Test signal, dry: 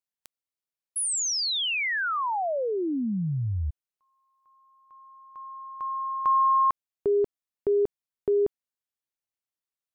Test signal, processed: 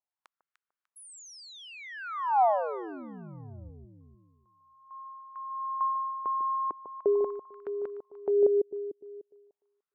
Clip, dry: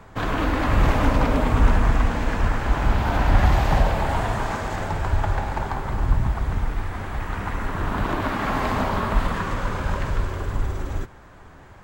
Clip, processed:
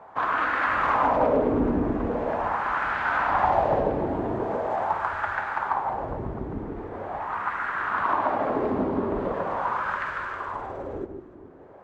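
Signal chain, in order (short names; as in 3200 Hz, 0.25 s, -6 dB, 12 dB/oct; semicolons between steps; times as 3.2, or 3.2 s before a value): echo with dull and thin repeats by turns 0.149 s, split 980 Hz, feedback 56%, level -7 dB; wah 0.42 Hz 330–1500 Hz, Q 2.4; gain +7 dB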